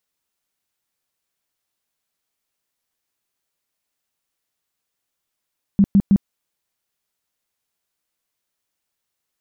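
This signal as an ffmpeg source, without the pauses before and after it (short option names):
-f lavfi -i "aevalsrc='0.355*sin(2*PI*198*mod(t,0.16))*lt(mod(t,0.16),10/198)':d=0.48:s=44100"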